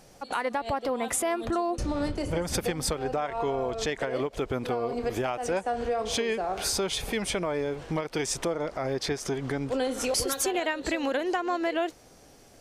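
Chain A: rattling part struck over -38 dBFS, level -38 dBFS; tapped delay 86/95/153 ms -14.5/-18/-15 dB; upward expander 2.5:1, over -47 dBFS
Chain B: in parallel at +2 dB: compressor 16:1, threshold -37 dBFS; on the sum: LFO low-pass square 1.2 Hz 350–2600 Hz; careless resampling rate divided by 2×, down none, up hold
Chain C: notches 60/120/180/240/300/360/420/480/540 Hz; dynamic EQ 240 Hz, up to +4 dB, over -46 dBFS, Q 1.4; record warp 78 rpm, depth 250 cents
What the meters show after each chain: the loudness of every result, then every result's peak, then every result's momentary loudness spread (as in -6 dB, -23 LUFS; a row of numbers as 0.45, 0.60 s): -33.5, -26.0, -29.0 LUFS; -17.5, -10.0, -15.0 dBFS; 6, 5, 3 LU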